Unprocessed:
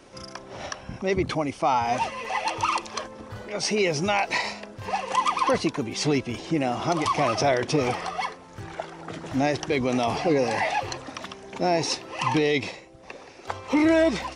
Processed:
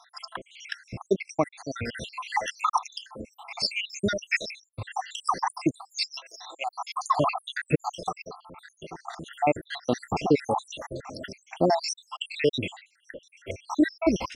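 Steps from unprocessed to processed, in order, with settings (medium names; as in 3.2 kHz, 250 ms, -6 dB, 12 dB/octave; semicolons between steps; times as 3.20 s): random holes in the spectrogram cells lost 81%; 6.20–7.14 s: inverse Chebyshev high-pass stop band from 220 Hz, stop band 60 dB; trim +4 dB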